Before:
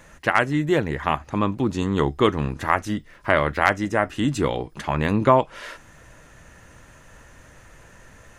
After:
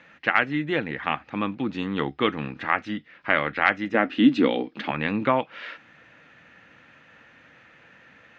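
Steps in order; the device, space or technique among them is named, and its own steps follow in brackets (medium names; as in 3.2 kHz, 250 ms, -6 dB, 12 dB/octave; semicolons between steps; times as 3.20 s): kitchen radio (cabinet simulation 230–3800 Hz, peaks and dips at 390 Hz -9 dB, 620 Hz -7 dB, 1 kHz -8 dB, 2.4 kHz +4 dB); 3.94–4.91 s: graphic EQ 125/250/500/4000 Hz -8/+12/+4/+5 dB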